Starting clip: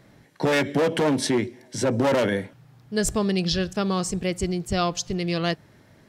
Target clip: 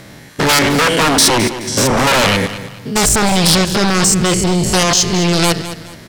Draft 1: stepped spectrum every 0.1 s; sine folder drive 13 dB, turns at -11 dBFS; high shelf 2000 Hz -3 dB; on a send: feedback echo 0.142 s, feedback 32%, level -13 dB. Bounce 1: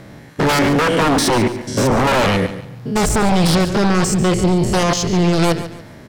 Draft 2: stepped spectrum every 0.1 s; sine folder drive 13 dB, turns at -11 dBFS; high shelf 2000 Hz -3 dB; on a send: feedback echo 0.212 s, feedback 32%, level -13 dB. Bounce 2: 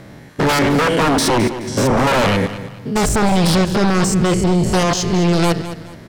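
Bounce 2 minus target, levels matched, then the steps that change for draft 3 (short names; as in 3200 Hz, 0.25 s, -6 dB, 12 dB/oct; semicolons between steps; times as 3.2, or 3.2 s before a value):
4000 Hz band -5.0 dB
change: high shelf 2000 Hz +8 dB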